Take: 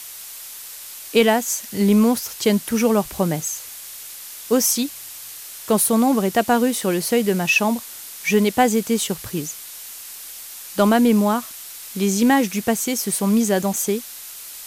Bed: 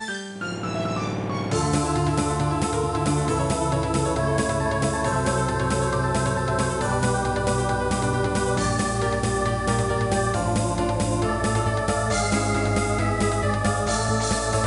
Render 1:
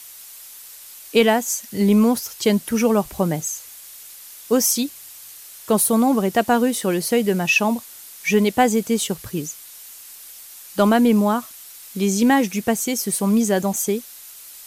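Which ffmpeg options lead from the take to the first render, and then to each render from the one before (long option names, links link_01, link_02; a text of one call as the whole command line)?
ffmpeg -i in.wav -af "afftdn=noise_reduction=6:noise_floor=-37" out.wav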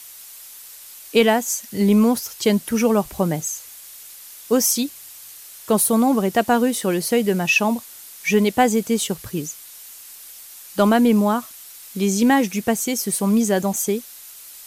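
ffmpeg -i in.wav -af anull out.wav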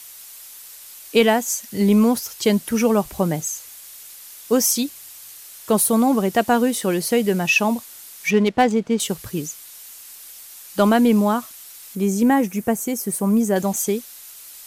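ffmpeg -i in.wav -filter_complex "[0:a]asettb=1/sr,asplit=3[link_01][link_02][link_03];[link_01]atrim=end=8.304[link_04];[link_02]atrim=start=8.3:end=9,asetpts=PTS-STARTPTS,afade=type=in:duration=0.004:curve=qsin,afade=type=out:start_time=0.696:duration=0.004:curve=qsin,adynamicsmooth=sensitivity=2:basefreq=2200[link_05];[link_03]atrim=start=8.996[link_06];[link_04][link_05]acrossfade=duration=0.004:curve1=hsin:curve2=qsin[link_07];[link_07][link_06]acrossfade=duration=0.004:curve1=qsin:curve2=hsin,asettb=1/sr,asplit=3[link_08][link_09][link_10];[link_08]atrim=end=11.954[link_11];[link_09]atrim=start=11.95:end=13.56,asetpts=PTS-STARTPTS,afade=type=in:duration=0.004:curve=qsin,afade=type=out:start_time=1.606:duration=0.004:curve=qsin,equalizer=frequency=3900:width=0.81:gain=-11.5[link_12];[link_10]atrim=start=13.556[link_13];[link_11][link_12]acrossfade=duration=0.004:curve1=hsin:curve2=qsin[link_14];[link_14][link_13]acrossfade=duration=0.004:curve1=qsin:curve2=hsin" out.wav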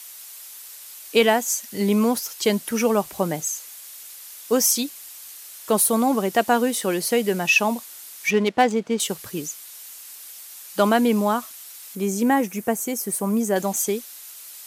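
ffmpeg -i in.wav -af "highpass=frequency=310:poles=1" out.wav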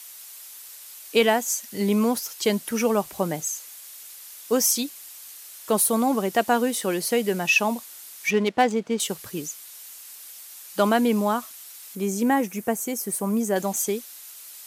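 ffmpeg -i in.wav -af "volume=-2dB" out.wav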